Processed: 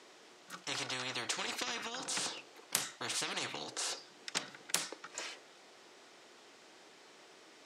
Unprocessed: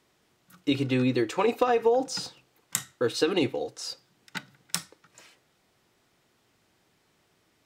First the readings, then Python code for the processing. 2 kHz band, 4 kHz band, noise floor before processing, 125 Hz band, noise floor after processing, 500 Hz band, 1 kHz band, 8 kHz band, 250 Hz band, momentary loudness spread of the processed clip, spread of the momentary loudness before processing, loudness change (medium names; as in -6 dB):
-3.5 dB, -2.0 dB, -69 dBFS, -19.5 dB, -59 dBFS, -21.0 dB, -11.5 dB, -1.0 dB, -21.0 dB, 21 LU, 16 LU, -10.0 dB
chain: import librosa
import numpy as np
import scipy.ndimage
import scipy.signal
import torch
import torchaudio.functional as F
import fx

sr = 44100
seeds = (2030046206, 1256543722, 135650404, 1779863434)

y = scipy.signal.sosfilt(scipy.signal.cheby1(2, 1.0, [380.0, 6800.0], 'bandpass', fs=sr, output='sos'), x)
y = fx.spectral_comp(y, sr, ratio=10.0)